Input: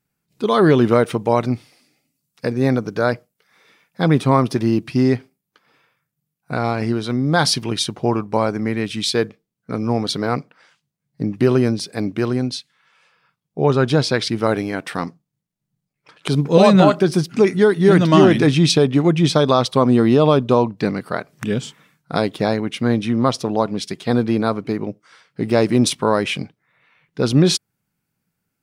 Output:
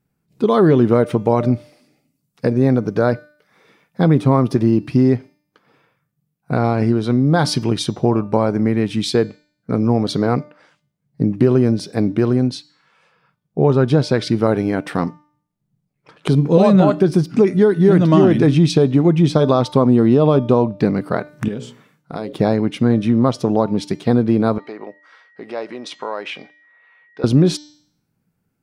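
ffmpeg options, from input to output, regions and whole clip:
-filter_complex "[0:a]asettb=1/sr,asplit=3[a][b][c];[a]atrim=end=21.484[d];[b]atrim=start=21.48:end=22.33,asetpts=PTS-STARTPTS,afade=t=in:d=0.004:c=qsin,afade=t=out:st=0.846:d=0.004:c=qsin,highpass=f=200:p=1,bandreject=f=60:t=h:w=6,bandreject=f=120:t=h:w=6,bandreject=f=180:t=h:w=6,bandreject=f=240:t=h:w=6,bandreject=f=300:t=h:w=6,bandreject=f=360:t=h:w=6,bandreject=f=420:t=h:w=6,bandreject=f=480:t=h:w=6,bandreject=f=540:t=h:w=6,acompressor=threshold=-35dB:ratio=2:attack=3.2:release=140:knee=1:detection=peak[e];[c]atrim=start=22.326[f];[d][e]acrossfade=d=0.004:c1=hsin:c2=qsin[g];[g][f]acrossfade=d=0.004:c1=qsin:c2=hsin,asettb=1/sr,asplit=3[h][i][j];[h]atrim=end=24.584[k];[i]atrim=start=24.58:end=27.24,asetpts=PTS-STARTPTS,afade=t=in:d=0.004:c=qsin,afade=t=out:st=2.656:d=0.004:c=qsin,acompressor=threshold=-22dB:ratio=3:attack=3.2:release=140:knee=1:detection=peak,aeval=exprs='val(0)+0.00316*sin(2*PI*1900*n/s)':c=same,highpass=660,lowpass=4.5k[l];[j]atrim=start=27.236[m];[k][l]acrossfade=d=0.004:c1=hsin:c2=qsin[n];[n][m]acrossfade=d=0.004:c1=qsin:c2=hsin,tiltshelf=f=1.1k:g=5.5,bandreject=f=298.2:t=h:w=4,bandreject=f=596.4:t=h:w=4,bandreject=f=894.6:t=h:w=4,bandreject=f=1.1928k:t=h:w=4,bandreject=f=1.491k:t=h:w=4,bandreject=f=1.7892k:t=h:w=4,bandreject=f=2.0874k:t=h:w=4,bandreject=f=2.3856k:t=h:w=4,bandreject=f=2.6838k:t=h:w=4,bandreject=f=2.982k:t=h:w=4,bandreject=f=3.2802k:t=h:w=4,bandreject=f=3.5784k:t=h:w=4,bandreject=f=3.8766k:t=h:w=4,bandreject=f=4.1748k:t=h:w=4,bandreject=f=4.473k:t=h:w=4,bandreject=f=4.7712k:t=h:w=4,bandreject=f=5.0694k:t=h:w=4,bandreject=f=5.3676k:t=h:w=4,bandreject=f=5.6658k:t=h:w=4,bandreject=f=5.964k:t=h:w=4,bandreject=f=6.2622k:t=h:w=4,bandreject=f=6.5604k:t=h:w=4,bandreject=f=6.8586k:t=h:w=4,bandreject=f=7.1568k:t=h:w=4,bandreject=f=7.455k:t=h:w=4,bandreject=f=7.7532k:t=h:w=4,acompressor=threshold=-15dB:ratio=2,volume=2dB"

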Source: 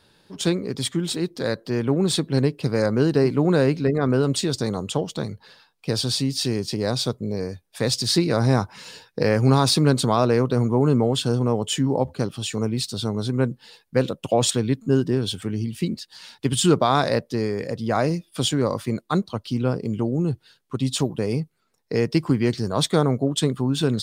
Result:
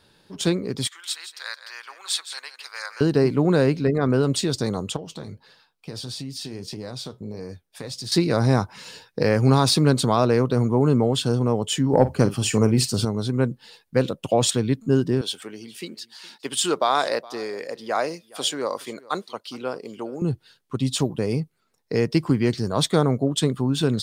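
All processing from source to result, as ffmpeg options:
-filter_complex "[0:a]asettb=1/sr,asplit=3[a][b][c];[a]atrim=end=0.874[d];[b]atrim=start=0.87:end=3.01,asetpts=PTS-STARTPTS,afade=t=in:d=0.004:c=qsin,afade=t=out:st=2.136:d=0.004:c=qsin,highpass=f=1.1k:w=0.5412,highpass=f=1.1k:w=1.3066,aecho=1:1:167:0.266,atrim=end_sample=94374[e];[c]atrim=start=3.006[f];[d][e]acrossfade=d=0.004:c1=hsin:c2=qsin[g];[g][f]acrossfade=d=0.004:c1=qsin:c2=hsin,asettb=1/sr,asplit=3[h][i][j];[h]atrim=end=4.964[k];[i]atrim=start=4.96:end=8.12,asetpts=PTS-STARTPTS,afade=t=in:d=0.004:c=qsin,afade=t=out:st=3.156:d=0.004:c=qsin,acompressor=threshold=-25dB:ratio=6:attack=3.2:release=140:knee=1:detection=peak,flanger=delay=6.1:depth=6.2:regen=-64:speed=1.6:shape=sinusoidal[l];[j]atrim=start=8.116[m];[k][l]acrossfade=d=0.004:c1=hsin:c2=qsin[n];[n][m]acrossfade=d=0.004:c1=qsin:c2=hsin,asettb=1/sr,asplit=3[o][p][q];[o]atrim=end=11.934[r];[p]atrim=start=11.93:end=13.05,asetpts=PTS-STARTPTS,afade=t=in:d=0.004:c=qsin,afade=t=out:st=1.116:d=0.004:c=qsin,equalizer=f=3.7k:w=4.3:g=-12.5,acontrast=72,asplit=2[s][t];[t]adelay=48,volume=-14dB[u];[s][u]amix=inputs=2:normalize=0,atrim=end_sample=49392[v];[q]atrim=start=13.046[w];[r][v]acrossfade=d=0.004:c1=hsin:c2=qsin[x];[x][w]acrossfade=d=0.004:c1=qsin:c2=hsin,asettb=1/sr,asplit=3[y][z][aa];[y]atrim=end=15.214[ab];[z]atrim=start=15.21:end=20.22,asetpts=PTS-STARTPTS,afade=t=in:d=0.004:c=qsin,afade=t=out:st=5.006:d=0.004:c=qsin,highpass=480,aecho=1:1:416:0.0794,atrim=end_sample=220941[ac];[aa]atrim=start=20.216[ad];[ab][ac]acrossfade=d=0.004:c1=hsin:c2=qsin[ae];[ae][ad]acrossfade=d=0.004:c1=qsin:c2=hsin"

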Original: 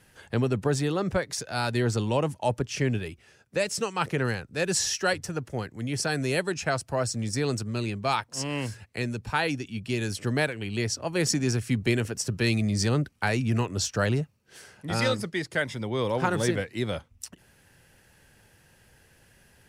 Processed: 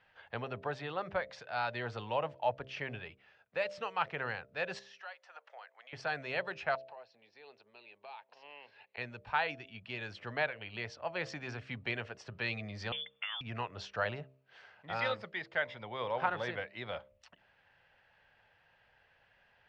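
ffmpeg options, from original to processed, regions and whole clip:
-filter_complex "[0:a]asettb=1/sr,asplit=3[a][b][c];[a]atrim=end=4.794[d];[b]atrim=start=4.79:end=5.93,asetpts=PTS-STARTPTS,afade=t=in:d=0.004:c=qsin,afade=t=out:st=1.136:d=0.004:c=qsin,highpass=f=630:w=0.5412,highpass=f=630:w=1.3066,acompressor=threshold=-44dB:ratio=2.5:attack=3.2:release=140:knee=1:detection=peak[e];[c]atrim=start=5.926[f];[d][e]acrossfade=d=0.004:c1=hsin:c2=qsin[g];[g][f]acrossfade=d=0.004:c1=qsin:c2=hsin,asettb=1/sr,asplit=3[h][i][j];[h]atrim=end=6.754[k];[i]atrim=start=6.75:end=8.98,asetpts=PTS-STARTPTS,afade=t=in:d=0.004:c=qsin,afade=t=out:st=2.226:d=0.004:c=qsin,acompressor=threshold=-43dB:ratio=6:attack=3.2:release=140:knee=1:detection=peak,highpass=310,equalizer=f=410:t=q:w=4:g=8,equalizer=f=860:t=q:w=4:g=6,equalizer=f=1.3k:t=q:w=4:g=-6,equalizer=f=2.6k:t=q:w=4:g=6,equalizer=f=4.1k:t=q:w=4:g=7,lowpass=f=5.3k:w=0.5412,lowpass=f=5.3k:w=1.3066[l];[j]atrim=start=8.976[m];[k][l]acrossfade=d=0.004:c1=hsin:c2=qsin[n];[n][m]acrossfade=d=0.004:c1=qsin:c2=hsin,asettb=1/sr,asplit=3[o][p][q];[o]atrim=end=12.924[r];[p]atrim=start=12.92:end=13.41,asetpts=PTS-STARTPTS,afade=t=in:d=0.004:c=qsin,afade=t=out:st=0.486:d=0.004:c=qsin,equalizer=f=840:w=3.9:g=8,acompressor=threshold=-28dB:ratio=10:attack=3.2:release=140:knee=1:detection=peak,lowpass=f=3.1k:t=q:w=0.5098,lowpass=f=3.1k:t=q:w=0.6013,lowpass=f=3.1k:t=q:w=0.9,lowpass=f=3.1k:t=q:w=2.563,afreqshift=-3600[s];[q]atrim=start=13.406[t];[r][s]acrossfade=d=0.004:c1=hsin:c2=qsin[u];[u][t]acrossfade=d=0.004:c1=qsin:c2=hsin,lowpass=f=3.5k:w=0.5412,lowpass=f=3.5k:w=1.3066,lowshelf=f=470:t=q:w=1.5:g=-11,bandreject=f=66.29:t=h:w=4,bandreject=f=132.58:t=h:w=4,bandreject=f=198.87:t=h:w=4,bandreject=f=265.16:t=h:w=4,bandreject=f=331.45:t=h:w=4,bandreject=f=397.74:t=h:w=4,bandreject=f=464.03:t=h:w=4,bandreject=f=530.32:t=h:w=4,bandreject=f=596.61:t=h:w=4,bandreject=f=662.9:t=h:w=4,volume=-6dB"

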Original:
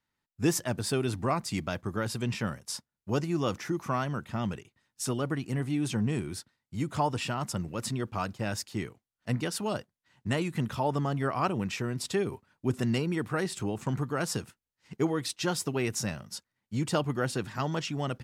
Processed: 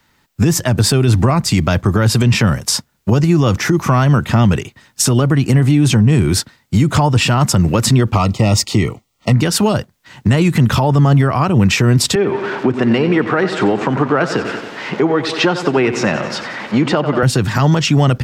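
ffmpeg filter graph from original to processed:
-filter_complex "[0:a]asettb=1/sr,asplit=3[a][b][c];[a]atrim=end=8.154[d];[b]atrim=start=8.15:end=9.33,asetpts=PTS-STARTPTS,afade=t=in:d=0.004:c=qsin,afade=t=out:st=1.176:d=0.004:c=qsin,asoftclip=type=hard:threshold=-21dB,asuperstop=centerf=1600:order=20:qfactor=3.8,equalizer=f=12k:w=3.7:g=-11.5[e];[c]atrim=start=9.326[f];[d][e]acrossfade=d=0.004:c1=hsin:c2=qsin[g];[g][f]acrossfade=d=0.004:c1=qsin:c2=hsin,asettb=1/sr,asplit=3[h][i][j];[h]atrim=end=12.154[k];[i]atrim=start=12.15:end=17.23,asetpts=PTS-STARTPTS,afade=t=in:d=0.004:c=qsin,afade=t=out:st=5.076:d=0.004:c=qsin,aeval=exprs='val(0)+0.5*0.00708*sgn(val(0))':c=same,highpass=300,lowpass=2.4k,aecho=1:1:91|182|273|364|455|546:0.224|0.13|0.0753|0.0437|0.0253|0.0147,atrim=end_sample=224028[l];[j]atrim=start=17.226[m];[k][l]acrossfade=d=0.004:c1=hsin:c2=qsin[n];[n][m]acrossfade=d=0.004:c1=qsin:c2=hsin,equalizer=f=9.9k:w=5.1:g=-6.5,acrossover=split=140[o][p];[p]acompressor=threshold=-38dB:ratio=6[q];[o][q]amix=inputs=2:normalize=0,alimiter=level_in=29.5dB:limit=-1dB:release=50:level=0:latency=1,volume=-3dB"

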